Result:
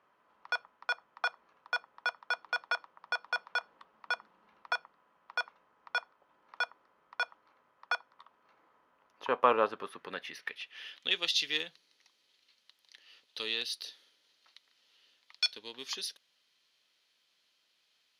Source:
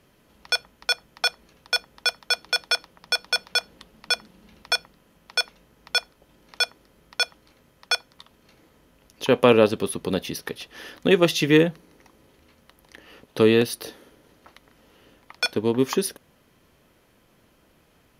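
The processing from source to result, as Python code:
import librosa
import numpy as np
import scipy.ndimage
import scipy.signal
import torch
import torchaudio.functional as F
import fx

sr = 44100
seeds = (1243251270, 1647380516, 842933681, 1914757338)

y = fx.cheby_harmonics(x, sr, harmonics=(8,), levels_db=(-37,), full_scale_db=-1.0)
y = fx.filter_sweep_bandpass(y, sr, from_hz=1100.0, to_hz=4100.0, start_s=9.61, end_s=11.32, q=2.4)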